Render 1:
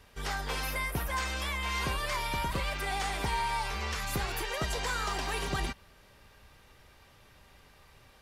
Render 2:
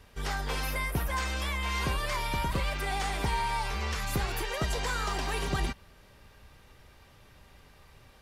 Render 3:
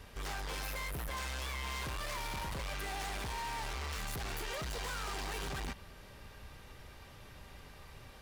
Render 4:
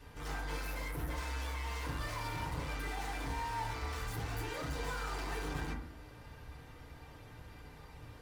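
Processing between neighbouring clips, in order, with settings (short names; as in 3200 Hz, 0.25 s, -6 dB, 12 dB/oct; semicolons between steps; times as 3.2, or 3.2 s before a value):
low shelf 400 Hz +4 dB
in parallel at -2 dB: limiter -30.5 dBFS, peak gain reduction 10 dB; on the sum: hard clip -36 dBFS, distortion -5 dB; gain -2 dB
FDN reverb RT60 0.56 s, low-frequency decay 1.35×, high-frequency decay 0.3×, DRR -6 dB; gain -7.5 dB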